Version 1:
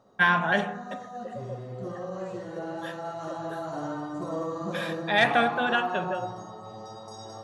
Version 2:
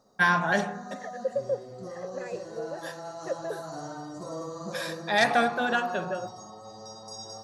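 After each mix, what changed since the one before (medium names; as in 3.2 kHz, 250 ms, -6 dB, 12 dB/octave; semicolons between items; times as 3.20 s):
second voice +11.5 dB; background: send off; master: add resonant high shelf 3.9 kHz +6.5 dB, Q 3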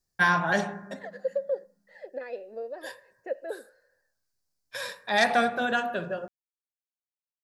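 background: muted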